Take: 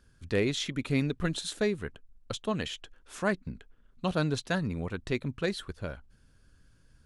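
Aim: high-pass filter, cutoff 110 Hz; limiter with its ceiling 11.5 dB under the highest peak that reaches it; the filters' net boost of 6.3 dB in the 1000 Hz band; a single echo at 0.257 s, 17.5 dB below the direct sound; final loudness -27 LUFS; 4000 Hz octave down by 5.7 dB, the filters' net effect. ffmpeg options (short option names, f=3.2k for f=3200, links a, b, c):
-af "highpass=110,equalizer=f=1k:t=o:g=8.5,equalizer=f=4k:t=o:g=-7.5,alimiter=limit=-22dB:level=0:latency=1,aecho=1:1:257:0.133,volume=8.5dB"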